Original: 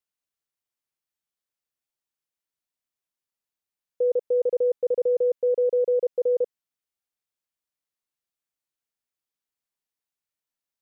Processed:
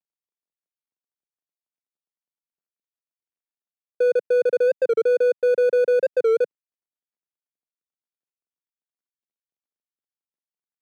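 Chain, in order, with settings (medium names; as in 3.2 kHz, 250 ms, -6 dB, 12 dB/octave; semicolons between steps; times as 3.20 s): median filter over 41 samples; high-pass 160 Hz 24 dB/octave; warped record 45 rpm, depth 160 cents; trim +5 dB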